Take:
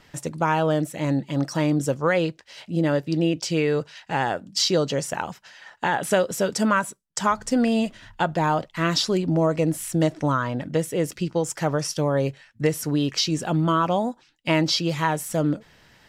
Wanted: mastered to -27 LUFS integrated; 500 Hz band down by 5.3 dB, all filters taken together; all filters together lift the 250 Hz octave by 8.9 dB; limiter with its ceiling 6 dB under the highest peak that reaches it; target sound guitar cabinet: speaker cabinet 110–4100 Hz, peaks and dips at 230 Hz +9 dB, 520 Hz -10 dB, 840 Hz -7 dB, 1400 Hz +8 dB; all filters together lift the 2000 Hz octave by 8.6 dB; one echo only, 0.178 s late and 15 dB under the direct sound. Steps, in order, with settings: bell 250 Hz +8 dB; bell 500 Hz -5 dB; bell 2000 Hz +7.5 dB; limiter -12 dBFS; speaker cabinet 110–4100 Hz, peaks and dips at 230 Hz +9 dB, 520 Hz -10 dB, 840 Hz -7 dB, 1400 Hz +8 dB; echo 0.178 s -15 dB; gain -6.5 dB

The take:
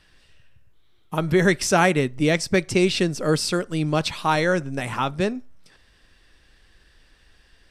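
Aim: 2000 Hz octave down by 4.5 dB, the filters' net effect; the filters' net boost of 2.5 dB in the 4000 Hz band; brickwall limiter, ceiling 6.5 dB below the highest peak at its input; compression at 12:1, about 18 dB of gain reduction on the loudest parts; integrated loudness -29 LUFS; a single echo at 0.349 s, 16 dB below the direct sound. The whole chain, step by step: bell 2000 Hz -7 dB; bell 4000 Hz +5 dB; compressor 12:1, threshold -33 dBFS; limiter -29 dBFS; echo 0.349 s -16 dB; gain +10 dB

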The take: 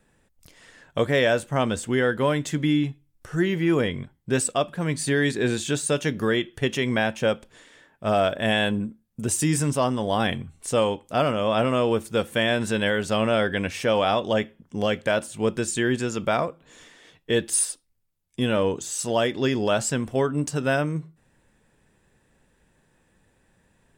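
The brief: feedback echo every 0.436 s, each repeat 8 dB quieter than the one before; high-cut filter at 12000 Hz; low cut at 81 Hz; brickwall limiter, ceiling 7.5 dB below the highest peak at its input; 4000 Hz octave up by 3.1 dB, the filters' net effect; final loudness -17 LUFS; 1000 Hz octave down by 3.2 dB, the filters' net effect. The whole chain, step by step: HPF 81 Hz; LPF 12000 Hz; bell 1000 Hz -5 dB; bell 4000 Hz +4.5 dB; limiter -16.5 dBFS; feedback echo 0.436 s, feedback 40%, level -8 dB; gain +10 dB

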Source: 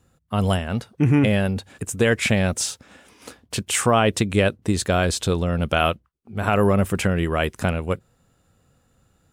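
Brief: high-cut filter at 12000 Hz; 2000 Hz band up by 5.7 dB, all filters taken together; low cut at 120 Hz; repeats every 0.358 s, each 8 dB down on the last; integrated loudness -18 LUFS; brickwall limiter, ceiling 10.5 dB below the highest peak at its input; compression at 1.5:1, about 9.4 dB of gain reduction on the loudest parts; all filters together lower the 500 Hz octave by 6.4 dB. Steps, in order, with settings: HPF 120 Hz; LPF 12000 Hz; bell 500 Hz -8.5 dB; bell 2000 Hz +8 dB; compressor 1.5:1, threshold -40 dBFS; limiter -21 dBFS; feedback echo 0.358 s, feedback 40%, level -8 dB; gain +15.5 dB

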